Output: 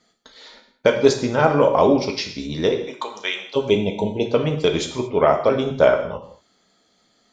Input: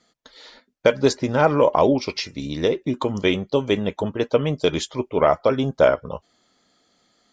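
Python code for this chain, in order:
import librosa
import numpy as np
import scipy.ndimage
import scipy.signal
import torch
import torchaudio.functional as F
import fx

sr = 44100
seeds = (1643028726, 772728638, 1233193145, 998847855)

y = fx.highpass(x, sr, hz=fx.line((2.8, 620.0), (3.55, 1300.0)), slope=12, at=(2.8, 3.55), fade=0.02)
y = fx.spec_box(y, sr, start_s=3.7, length_s=0.55, low_hz=1000.0, high_hz=2000.0, gain_db=-27)
y = fx.rev_gated(y, sr, seeds[0], gate_ms=250, shape='falling', drr_db=4.0)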